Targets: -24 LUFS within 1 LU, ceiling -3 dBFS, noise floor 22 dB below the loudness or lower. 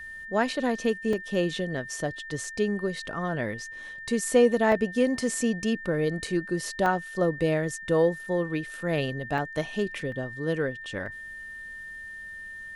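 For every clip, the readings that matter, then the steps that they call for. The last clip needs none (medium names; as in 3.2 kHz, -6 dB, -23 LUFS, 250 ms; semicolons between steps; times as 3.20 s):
dropouts 8; longest dropout 2.5 ms; steady tone 1.8 kHz; tone level -38 dBFS; loudness -27.5 LUFS; peak level -9.0 dBFS; loudness target -24.0 LUFS
-> interpolate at 1.13/2.44/4.72/6.27/6.86/9.38/10.12/11.06 s, 2.5 ms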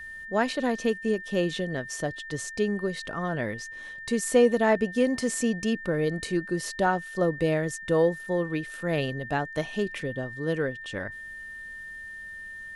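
dropouts 0; steady tone 1.8 kHz; tone level -38 dBFS
-> band-stop 1.8 kHz, Q 30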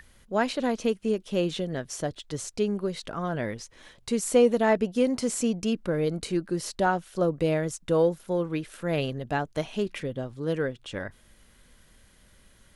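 steady tone not found; loudness -28.0 LUFS; peak level -9.0 dBFS; loudness target -24.0 LUFS
-> trim +4 dB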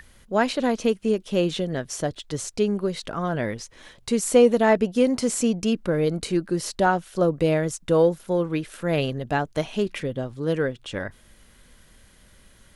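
loudness -24.0 LUFS; peak level -5.0 dBFS; noise floor -55 dBFS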